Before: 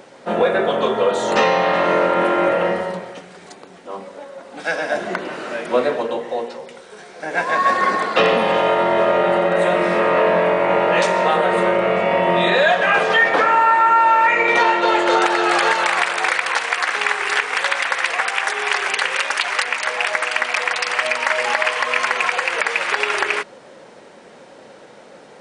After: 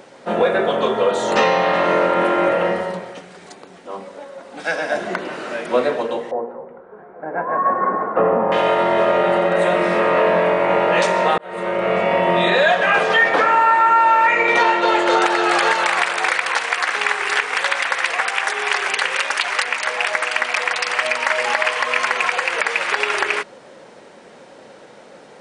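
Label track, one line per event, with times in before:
6.310000	8.520000	LPF 1300 Hz 24 dB/oct
11.380000	11.950000	fade in

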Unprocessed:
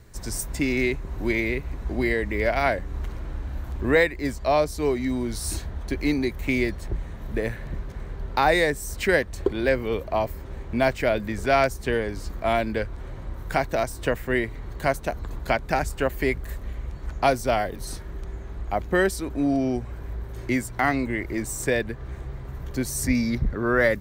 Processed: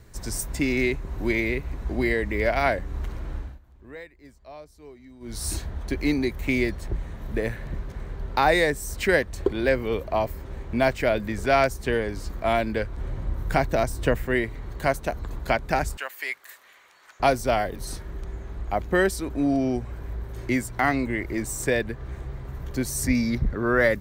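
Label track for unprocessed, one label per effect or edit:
3.370000	5.420000	dip -22 dB, fades 0.22 s
12.970000	14.270000	low shelf 300 Hz +6 dB
15.970000	17.200000	HPF 1300 Hz

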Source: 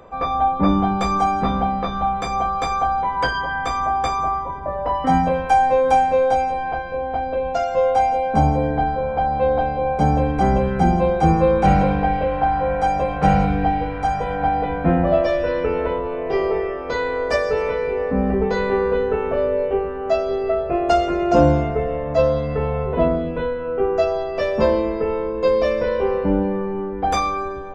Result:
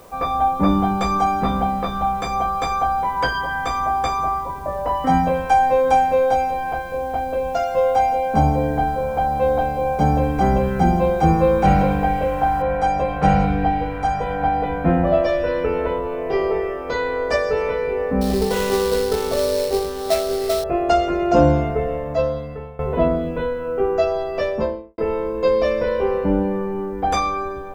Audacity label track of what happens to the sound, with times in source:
12.620000	12.620000	noise floor step -54 dB -67 dB
18.210000	20.640000	sample-rate reducer 4800 Hz, jitter 20%
21.890000	22.790000	fade out, to -19.5 dB
24.360000	24.980000	studio fade out

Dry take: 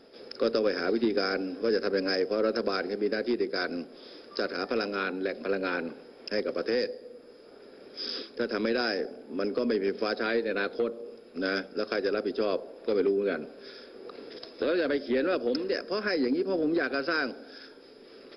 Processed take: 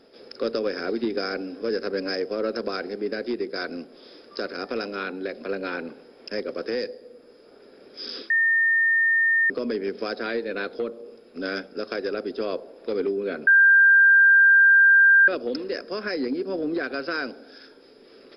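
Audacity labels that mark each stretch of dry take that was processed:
8.300000	9.500000	bleep 1820 Hz -17 dBFS
13.470000	15.280000	bleep 1590 Hz -11.5 dBFS

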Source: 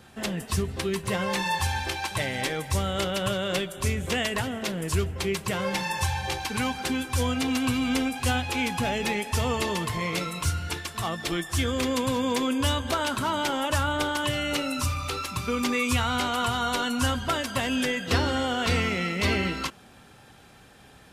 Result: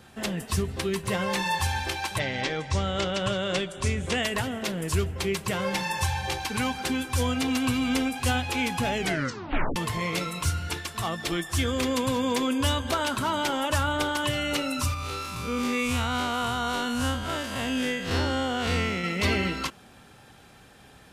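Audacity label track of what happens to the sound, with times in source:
2.180000	4.210000	LPF 5700 Hz -> 10000 Hz 24 dB/oct
8.970000	8.970000	tape stop 0.79 s
14.940000	19.040000	time blur width 0.108 s

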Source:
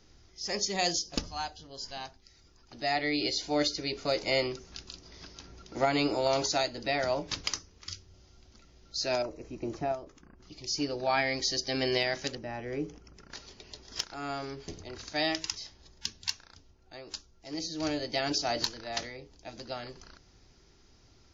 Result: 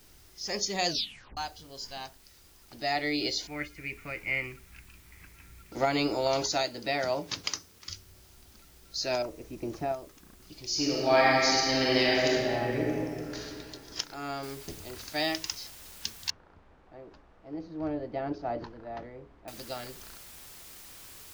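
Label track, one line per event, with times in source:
0.880000	0.880000	tape stop 0.49 s
3.470000	5.720000	EQ curve 100 Hz 0 dB, 640 Hz -16 dB, 2400 Hz +6 dB, 3800 Hz -28 dB, 7800 Hz -21 dB
6.630000	7.900000	HPF 96 Hz
10.640000	13.390000	reverb throw, RT60 2.4 s, DRR -4.5 dB
14.430000	14.430000	noise floor step -60 dB -49 dB
16.300000	19.480000	LPF 1000 Hz

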